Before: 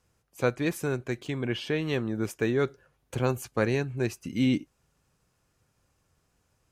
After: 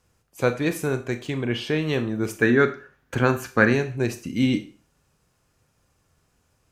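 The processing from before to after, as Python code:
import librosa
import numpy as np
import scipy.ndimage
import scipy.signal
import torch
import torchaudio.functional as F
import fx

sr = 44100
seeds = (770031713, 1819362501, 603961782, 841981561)

y = fx.graphic_eq_15(x, sr, hz=(250, 1600, 10000), db=(6, 12, -6), at=(2.42, 3.73))
y = fx.rev_schroeder(y, sr, rt60_s=0.37, comb_ms=26, drr_db=9.0)
y = F.gain(torch.from_numpy(y), 4.0).numpy()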